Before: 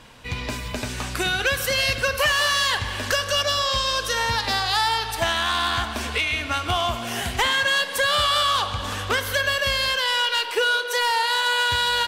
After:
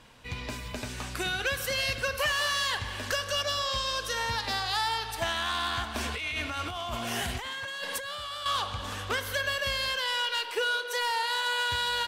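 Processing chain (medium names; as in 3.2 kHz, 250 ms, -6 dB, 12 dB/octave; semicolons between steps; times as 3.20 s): 5.94–8.46 s: compressor with a negative ratio -27 dBFS, ratio -1; trim -7.5 dB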